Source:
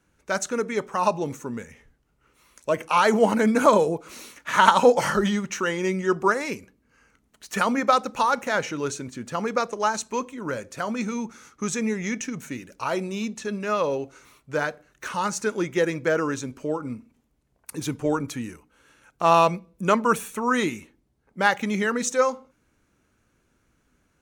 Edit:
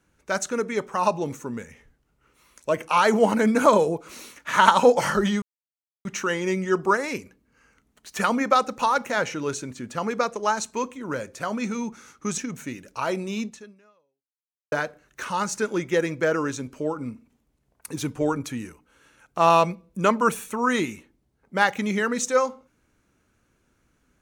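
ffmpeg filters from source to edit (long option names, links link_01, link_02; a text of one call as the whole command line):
ffmpeg -i in.wav -filter_complex "[0:a]asplit=4[link_01][link_02][link_03][link_04];[link_01]atrim=end=5.42,asetpts=PTS-STARTPTS,afade=type=out:start_time=5.416:duration=0.004:curve=hsin,apad=pad_dur=0.63[link_05];[link_02]atrim=start=5.42:end=11.752,asetpts=PTS-STARTPTS,afade=type=in:duration=0.004:curve=hsin[link_06];[link_03]atrim=start=12.218:end=14.56,asetpts=PTS-STARTPTS,afade=type=out:start_time=1.082:duration=1.26:curve=exp[link_07];[link_04]atrim=start=14.56,asetpts=PTS-STARTPTS,afade=type=in:duration=0.004:curve=hsin[link_08];[link_05][link_06]concat=n=2:v=0:a=1[link_09];[link_07][link_08]concat=n=2:v=0:a=1[link_10];[link_09][link_10]acrossfade=duration=0.004:curve1=hsin:curve2=hsin" out.wav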